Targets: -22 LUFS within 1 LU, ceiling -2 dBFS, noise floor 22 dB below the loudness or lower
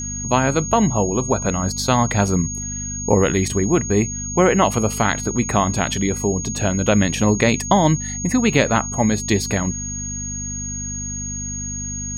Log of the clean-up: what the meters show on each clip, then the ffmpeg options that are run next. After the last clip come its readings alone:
hum 50 Hz; highest harmonic 250 Hz; hum level -28 dBFS; steady tone 6.6 kHz; tone level -27 dBFS; loudness -19.5 LUFS; peak level -2.0 dBFS; loudness target -22.0 LUFS
-> -af "bandreject=f=50:t=h:w=4,bandreject=f=100:t=h:w=4,bandreject=f=150:t=h:w=4,bandreject=f=200:t=h:w=4,bandreject=f=250:t=h:w=4"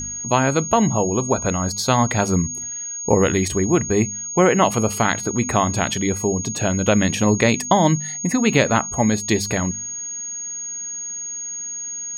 hum not found; steady tone 6.6 kHz; tone level -27 dBFS
-> -af "bandreject=f=6600:w=30"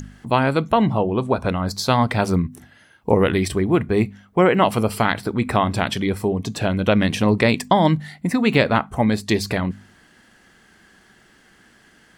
steady tone not found; loudness -20.0 LUFS; peak level -2.5 dBFS; loudness target -22.0 LUFS
-> -af "volume=0.794"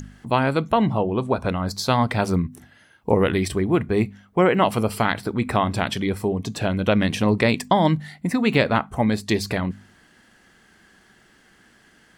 loudness -22.0 LUFS; peak level -4.5 dBFS; noise floor -56 dBFS

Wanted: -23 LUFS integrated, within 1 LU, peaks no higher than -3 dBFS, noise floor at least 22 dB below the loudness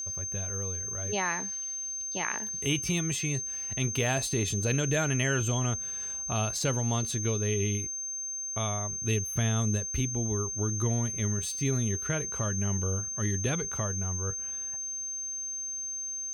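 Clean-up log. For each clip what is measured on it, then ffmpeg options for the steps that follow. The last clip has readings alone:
steady tone 6.3 kHz; tone level -33 dBFS; loudness -29.5 LUFS; peak level -14.5 dBFS; loudness target -23.0 LUFS
-> -af "bandreject=f=6300:w=30"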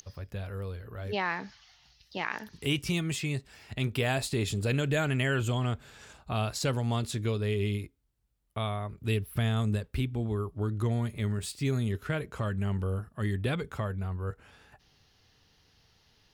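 steady tone not found; loudness -32.0 LUFS; peak level -15.5 dBFS; loudness target -23.0 LUFS
-> -af "volume=2.82"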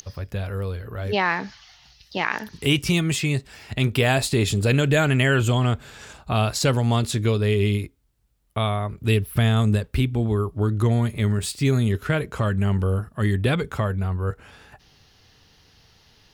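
loudness -22.5 LUFS; peak level -6.5 dBFS; noise floor -58 dBFS

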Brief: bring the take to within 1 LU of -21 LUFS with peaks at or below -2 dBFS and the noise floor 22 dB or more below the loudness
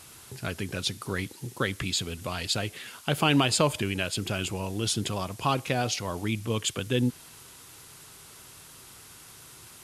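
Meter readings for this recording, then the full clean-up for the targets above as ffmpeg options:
noise floor -50 dBFS; noise floor target -51 dBFS; loudness -28.5 LUFS; peak level -10.0 dBFS; loudness target -21.0 LUFS
-> -af "afftdn=nr=6:nf=-50"
-af "volume=2.37"

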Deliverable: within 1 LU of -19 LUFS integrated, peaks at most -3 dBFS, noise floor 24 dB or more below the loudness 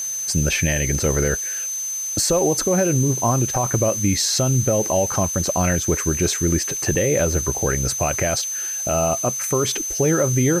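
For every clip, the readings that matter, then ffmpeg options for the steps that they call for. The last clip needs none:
steady tone 6.2 kHz; tone level -24 dBFS; noise floor -27 dBFS; noise floor target -44 dBFS; loudness -19.5 LUFS; peak level -8.5 dBFS; loudness target -19.0 LUFS
-> -af "bandreject=f=6200:w=30"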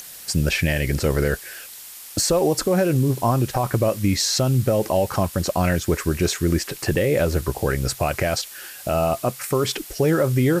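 steady tone not found; noise floor -40 dBFS; noise floor target -46 dBFS
-> -af "afftdn=nr=6:nf=-40"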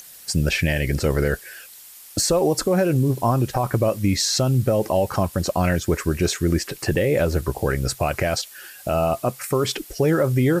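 noise floor -44 dBFS; noise floor target -46 dBFS
-> -af "afftdn=nr=6:nf=-44"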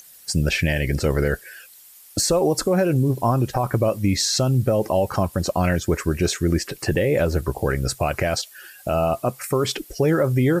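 noise floor -47 dBFS; loudness -22.0 LUFS; peak level -10.0 dBFS; loudness target -19.0 LUFS
-> -af "volume=1.41"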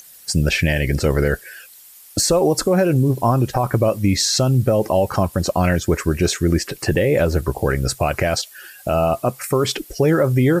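loudness -19.0 LUFS; peak level -7.0 dBFS; noise floor -44 dBFS

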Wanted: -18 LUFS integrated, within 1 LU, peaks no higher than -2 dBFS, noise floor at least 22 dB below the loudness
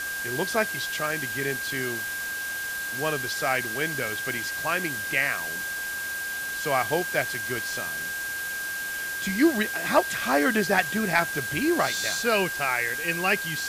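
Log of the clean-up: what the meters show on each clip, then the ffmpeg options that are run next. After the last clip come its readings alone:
steady tone 1.6 kHz; tone level -30 dBFS; noise floor -32 dBFS; noise floor target -48 dBFS; loudness -26.0 LUFS; peak level -8.5 dBFS; loudness target -18.0 LUFS
-> -af "bandreject=f=1600:w=30"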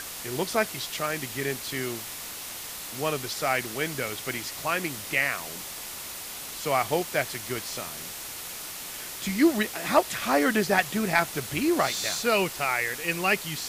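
steady tone not found; noise floor -38 dBFS; noise floor target -50 dBFS
-> -af "afftdn=nr=12:nf=-38"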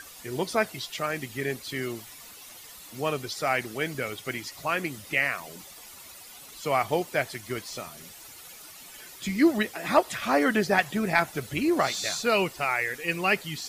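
noise floor -47 dBFS; noise floor target -50 dBFS
-> -af "afftdn=nr=6:nf=-47"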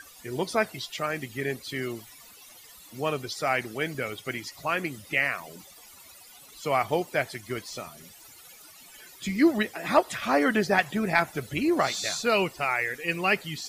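noise floor -51 dBFS; loudness -27.5 LUFS; peak level -9.0 dBFS; loudness target -18.0 LUFS
-> -af "volume=2.99,alimiter=limit=0.794:level=0:latency=1"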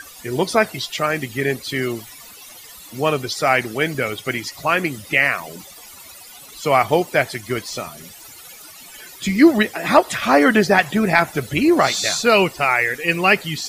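loudness -18.5 LUFS; peak level -2.0 dBFS; noise floor -41 dBFS

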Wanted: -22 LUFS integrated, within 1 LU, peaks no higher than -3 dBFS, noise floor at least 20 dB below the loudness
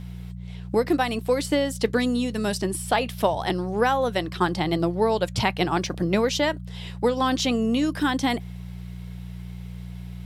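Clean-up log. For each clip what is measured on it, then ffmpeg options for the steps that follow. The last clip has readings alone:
hum 60 Hz; highest harmonic 180 Hz; hum level -34 dBFS; loudness -24.0 LUFS; peak level -8.5 dBFS; loudness target -22.0 LUFS
-> -af "bandreject=f=60:t=h:w=4,bandreject=f=120:t=h:w=4,bandreject=f=180:t=h:w=4"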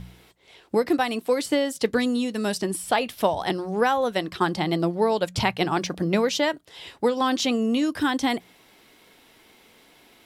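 hum not found; loudness -24.5 LUFS; peak level -8.0 dBFS; loudness target -22.0 LUFS
-> -af "volume=1.33"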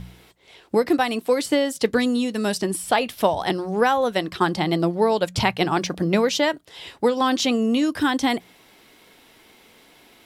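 loudness -22.0 LUFS; peak level -5.5 dBFS; noise floor -53 dBFS

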